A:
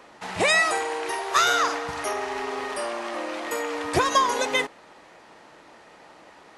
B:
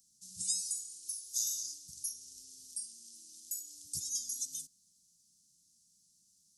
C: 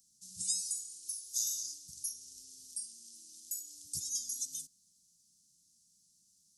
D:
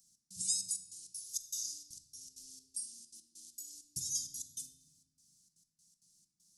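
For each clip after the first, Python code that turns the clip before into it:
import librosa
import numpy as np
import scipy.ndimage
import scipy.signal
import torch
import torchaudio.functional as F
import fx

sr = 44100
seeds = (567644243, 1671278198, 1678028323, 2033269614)

y1 = scipy.signal.sosfilt(scipy.signal.ellip(3, 1.0, 50, [190.0, 5700.0], 'bandstop', fs=sr, output='sos'), x)
y1 = F.preemphasis(torch.from_numpy(y1), 0.9).numpy()
y2 = y1
y3 = fx.step_gate(y2, sr, bpm=197, pattern='xx..xxxx.x..xx.x', floor_db=-60.0, edge_ms=4.5)
y3 = fx.room_shoebox(y3, sr, seeds[0], volume_m3=920.0, walls='mixed', distance_m=0.73)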